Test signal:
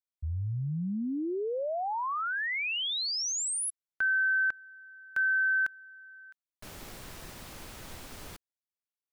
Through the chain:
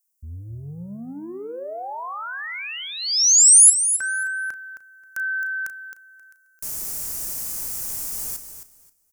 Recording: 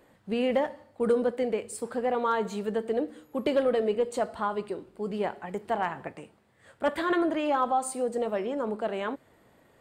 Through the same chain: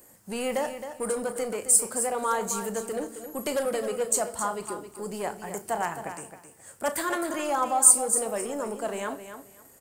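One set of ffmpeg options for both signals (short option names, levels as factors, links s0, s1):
-filter_complex "[0:a]acrossover=split=570|2400[s0][s1][s2];[s0]asoftclip=type=tanh:threshold=0.0237[s3];[s3][s1][s2]amix=inputs=3:normalize=0,aexciter=amount=9.7:drive=5.7:freq=5400,asplit=2[s4][s5];[s5]adelay=35,volume=0.224[s6];[s4][s6]amix=inputs=2:normalize=0,aecho=1:1:266|532|798:0.316|0.0632|0.0126"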